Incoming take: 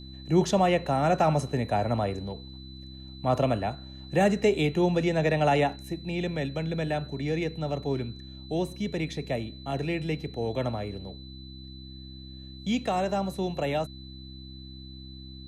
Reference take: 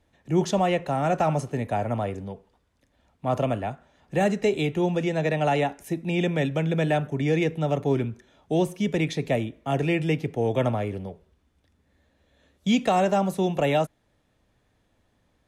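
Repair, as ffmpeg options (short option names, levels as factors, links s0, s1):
-af "bandreject=f=65.4:t=h:w=4,bandreject=f=130.8:t=h:w=4,bandreject=f=196.2:t=h:w=4,bandreject=f=261.6:t=h:w=4,bandreject=f=327:t=h:w=4,bandreject=f=4000:w=30,asetnsamples=n=441:p=0,asendcmd='5.76 volume volume 6dB',volume=1"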